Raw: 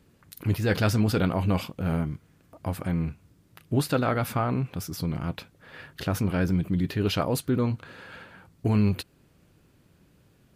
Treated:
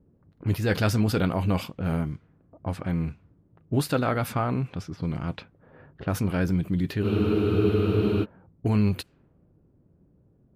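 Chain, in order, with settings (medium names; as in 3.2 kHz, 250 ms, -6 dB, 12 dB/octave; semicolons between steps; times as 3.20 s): level-controlled noise filter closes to 520 Hz, open at -23.5 dBFS; spectral freeze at 7.07 s, 1.17 s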